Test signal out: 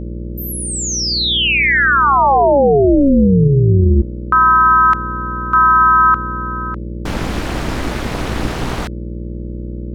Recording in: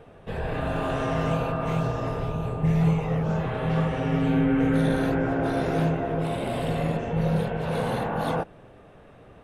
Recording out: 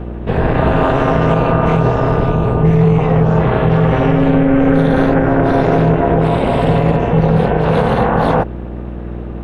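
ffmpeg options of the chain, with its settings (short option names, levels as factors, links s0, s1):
-af "aemphasis=mode=reproduction:type=75fm,aeval=exprs='val(0)+0.0126*(sin(2*PI*60*n/s)+sin(2*PI*2*60*n/s)/2+sin(2*PI*3*60*n/s)/3+sin(2*PI*4*60*n/s)/4+sin(2*PI*5*60*n/s)/5)':c=same,tremolo=f=280:d=0.824,alimiter=level_in=8.91:limit=0.891:release=50:level=0:latency=1,volume=0.891"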